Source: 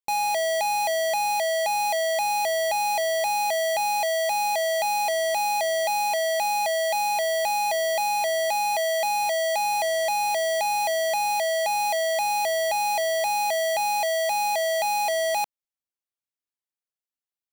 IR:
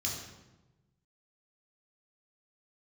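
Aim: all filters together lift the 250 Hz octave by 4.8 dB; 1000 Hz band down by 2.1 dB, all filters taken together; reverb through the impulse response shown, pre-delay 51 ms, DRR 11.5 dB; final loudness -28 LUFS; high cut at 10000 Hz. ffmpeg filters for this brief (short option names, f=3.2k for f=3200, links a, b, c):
-filter_complex "[0:a]lowpass=10k,equalizer=f=250:t=o:g=8.5,equalizer=f=1k:t=o:g=-3.5,asplit=2[a][b];[1:a]atrim=start_sample=2205,adelay=51[c];[b][c]afir=irnorm=-1:irlink=0,volume=-14.5dB[d];[a][d]amix=inputs=2:normalize=0,volume=-3.5dB"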